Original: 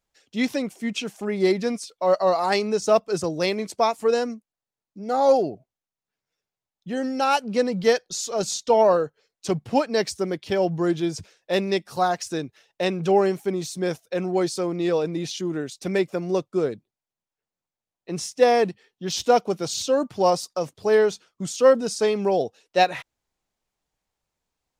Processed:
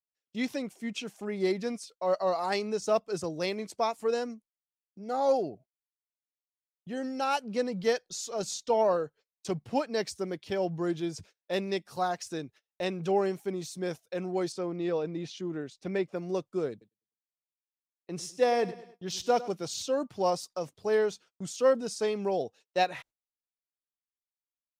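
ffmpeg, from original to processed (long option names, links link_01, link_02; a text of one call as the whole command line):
ffmpeg -i in.wav -filter_complex "[0:a]asettb=1/sr,asplit=3[link_01][link_02][link_03];[link_01]atrim=end=14.524[link_04];[link_02]atrim=start=14.52:end=16.16,asetpts=PTS-STARTPTS,afade=type=in:duration=0.004:curve=qsin,afade=type=out:start_time=1.636:duration=0.004:curve=qsin,aemphasis=mode=reproduction:type=50fm[link_05];[link_03]atrim=start=16.156[link_06];[link_04][link_05]acrossfade=duration=0.004:curve1=hsin:curve2=qsin[link_07];[link_07][link_06]acrossfade=duration=0.004:curve1=qsin:curve2=hsin,asettb=1/sr,asplit=3[link_08][link_09][link_10];[link_08]atrim=end=16.714[link_11];[link_09]atrim=start=16.71:end=19.51,asetpts=PTS-STARTPTS,afade=type=in:duration=0.004:curve=qsin,afade=type=out:start_time=2.796:duration=0.004:curve=qsin,aecho=1:1:101|202|303|404:0.158|0.0713|0.0321|0.0144,atrim=end_sample=123480[link_12];[link_10]atrim=start=19.506[link_13];[link_11][link_12]acrossfade=duration=0.004:curve1=hsin:curve2=qsin[link_14];[link_14][link_13]acrossfade=duration=0.004:curve1=qsin:curve2=hsin,agate=range=-25dB:threshold=-45dB:ratio=16:detection=peak,volume=-8dB" out.wav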